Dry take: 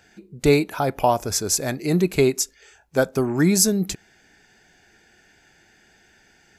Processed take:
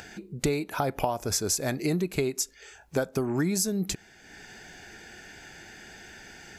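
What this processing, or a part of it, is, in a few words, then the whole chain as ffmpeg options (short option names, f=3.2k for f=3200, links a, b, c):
upward and downward compression: -af "acompressor=mode=upward:threshold=-40dB:ratio=2.5,acompressor=threshold=-26dB:ratio=8,volume=2dB"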